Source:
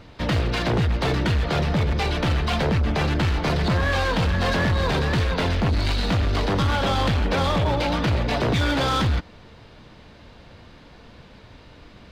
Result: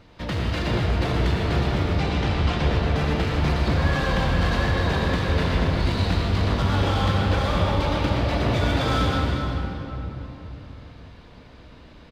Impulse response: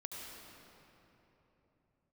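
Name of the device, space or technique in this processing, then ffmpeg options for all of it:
cave: -filter_complex "[0:a]asettb=1/sr,asplit=3[a][b][c];[a]atrim=end=1.994[d];[b]atrim=start=1.99:end=2.65,asetpts=PTS-STARTPTS,afade=t=in:d=0.004:c=qsin,afade=t=out:st=0.656:d=0.004:c=qsin,lowpass=7.7k[e];[c]atrim=start=2.646[f];[d][e]acrossfade=d=0.004:c1=hsin:c2=qsin[g];[g][f]acrossfade=d=0.004:c1=qsin:c2=hsin,aecho=1:1:362:0.237[h];[1:a]atrim=start_sample=2205[i];[h][i]afir=irnorm=-1:irlink=0"

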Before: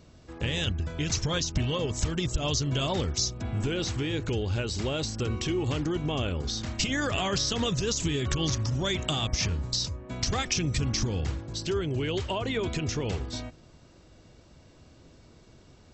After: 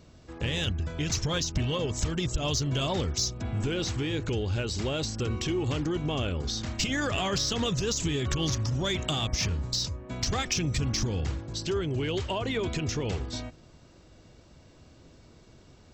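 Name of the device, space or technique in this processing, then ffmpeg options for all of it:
parallel distortion: -filter_complex "[0:a]asplit=2[a][b];[b]asoftclip=type=hard:threshold=-26.5dB,volume=-9dB[c];[a][c]amix=inputs=2:normalize=0,volume=-2.5dB"

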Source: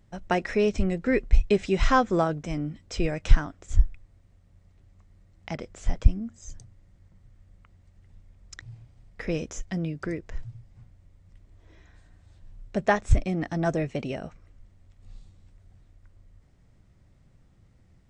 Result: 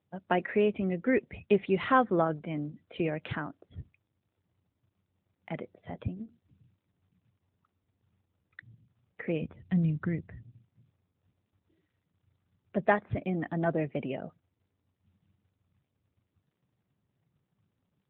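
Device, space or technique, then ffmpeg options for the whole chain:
mobile call with aggressive noise cancelling: -filter_complex "[0:a]asplit=3[a][b][c];[a]afade=t=out:st=9.4:d=0.02[d];[b]asubboost=boost=10:cutoff=130,afade=t=in:st=9.4:d=0.02,afade=t=out:st=10.41:d=0.02[e];[c]afade=t=in:st=10.41:d=0.02[f];[d][e][f]amix=inputs=3:normalize=0,highpass=140,afftdn=nr=26:nf=-48,volume=-2dB" -ar 8000 -c:a libopencore_amrnb -b:a 12200

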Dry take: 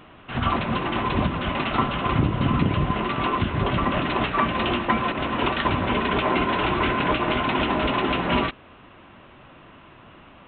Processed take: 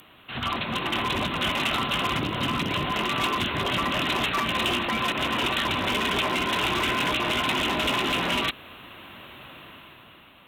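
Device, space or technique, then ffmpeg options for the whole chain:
FM broadcast chain: -filter_complex "[0:a]highpass=f=55:p=1,dynaudnorm=f=210:g=9:m=11dB,acrossover=split=210|3000[a][b][c];[a]acompressor=threshold=-26dB:ratio=4[d];[b]acompressor=threshold=-17dB:ratio=4[e];[c]acompressor=threshold=-30dB:ratio=4[f];[d][e][f]amix=inputs=3:normalize=0,aemphasis=mode=production:type=75fm,alimiter=limit=-11dB:level=0:latency=1:release=19,asoftclip=type=hard:threshold=-14dB,lowpass=f=15k:w=0.5412,lowpass=f=15k:w=1.3066,aemphasis=mode=production:type=75fm,volume=-6dB"

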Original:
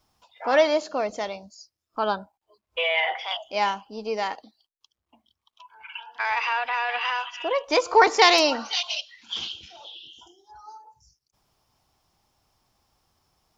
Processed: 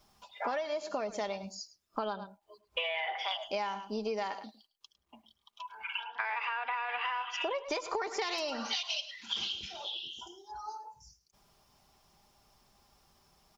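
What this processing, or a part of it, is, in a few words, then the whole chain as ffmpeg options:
serial compression, leveller first: -filter_complex "[0:a]aecho=1:1:5:0.4,asettb=1/sr,asplit=3[a][b][c];[a]atrim=end=6.044[d];[b]atrim=start=6.04:end=7.3,asetpts=PTS-STARTPTS,afade=t=in:d=0.004:c=qsin,afade=t=out:st=1.256:d=0.004:c=qsin,acrossover=split=220 3300:gain=0.126 1 0.112[e][f][g];[e][f][g]amix=inputs=3:normalize=0[h];[c]atrim=start=7.296[i];[d][h]acrossfade=d=0.004:c1=hsin:c2=qsin[j];[j][i]acrossfade=d=0.004:c1=qsin:c2=hsin,aecho=1:1:105:0.133,acompressor=threshold=-24dB:ratio=2.5,acompressor=threshold=-34dB:ratio=8,volume=2.5dB"

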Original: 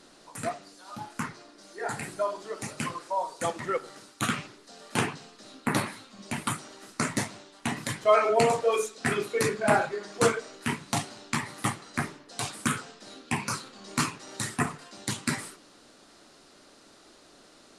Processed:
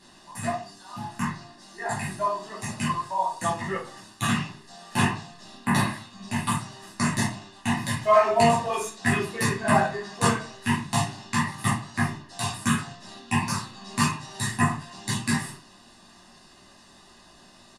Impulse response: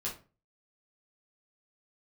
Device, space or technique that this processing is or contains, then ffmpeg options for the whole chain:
microphone above a desk: -filter_complex "[0:a]aecho=1:1:1.1:0.71[a];[1:a]atrim=start_sample=2205[b];[a][b]afir=irnorm=-1:irlink=0"

